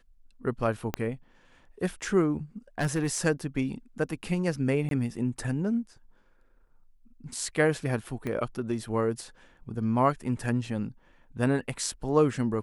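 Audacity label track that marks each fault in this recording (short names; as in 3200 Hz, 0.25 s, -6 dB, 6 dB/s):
0.940000	0.940000	pop -13 dBFS
2.790000	3.180000	clipped -22 dBFS
4.890000	4.910000	gap 22 ms
8.270000	8.270000	pop -21 dBFS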